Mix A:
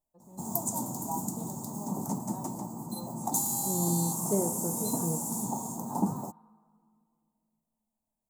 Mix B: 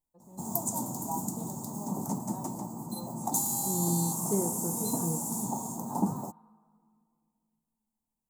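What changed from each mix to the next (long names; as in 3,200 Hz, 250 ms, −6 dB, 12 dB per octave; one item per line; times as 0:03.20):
second voice: add parametric band 630 Hz −14 dB 0.32 octaves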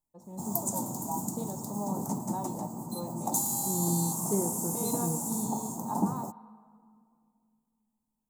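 first voice +8.5 dB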